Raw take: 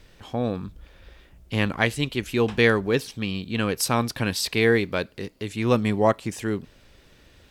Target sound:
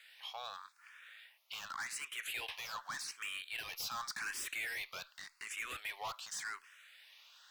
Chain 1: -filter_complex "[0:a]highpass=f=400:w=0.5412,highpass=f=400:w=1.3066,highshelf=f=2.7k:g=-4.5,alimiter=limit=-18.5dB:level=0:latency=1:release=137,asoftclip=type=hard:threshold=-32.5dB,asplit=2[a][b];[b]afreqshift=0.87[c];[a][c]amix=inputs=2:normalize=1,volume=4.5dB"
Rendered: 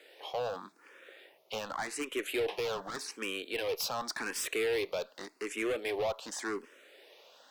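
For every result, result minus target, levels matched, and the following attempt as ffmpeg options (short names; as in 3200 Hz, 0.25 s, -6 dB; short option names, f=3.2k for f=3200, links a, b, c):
500 Hz band +18.0 dB; hard clip: distortion -4 dB
-filter_complex "[0:a]highpass=f=1.2k:w=0.5412,highpass=f=1.2k:w=1.3066,highshelf=f=2.7k:g=-4.5,alimiter=limit=-18.5dB:level=0:latency=1:release=137,asoftclip=type=hard:threshold=-32.5dB,asplit=2[a][b];[b]afreqshift=0.87[c];[a][c]amix=inputs=2:normalize=1,volume=4.5dB"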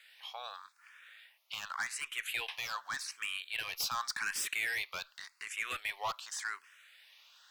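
hard clip: distortion -4 dB
-filter_complex "[0:a]highpass=f=1.2k:w=0.5412,highpass=f=1.2k:w=1.3066,highshelf=f=2.7k:g=-4.5,alimiter=limit=-18.5dB:level=0:latency=1:release=137,asoftclip=type=hard:threshold=-40.5dB,asplit=2[a][b];[b]afreqshift=0.87[c];[a][c]amix=inputs=2:normalize=1,volume=4.5dB"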